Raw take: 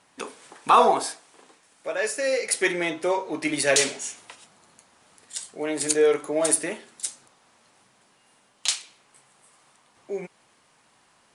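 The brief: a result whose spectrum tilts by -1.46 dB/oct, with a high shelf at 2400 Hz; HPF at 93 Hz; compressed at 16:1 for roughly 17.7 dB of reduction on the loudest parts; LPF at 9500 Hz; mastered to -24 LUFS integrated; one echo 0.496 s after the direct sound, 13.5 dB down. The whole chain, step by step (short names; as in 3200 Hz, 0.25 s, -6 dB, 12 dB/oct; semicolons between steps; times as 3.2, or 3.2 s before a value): HPF 93 Hz; LPF 9500 Hz; high shelf 2400 Hz +4 dB; compressor 16:1, threshold -29 dBFS; echo 0.496 s -13.5 dB; gain +10.5 dB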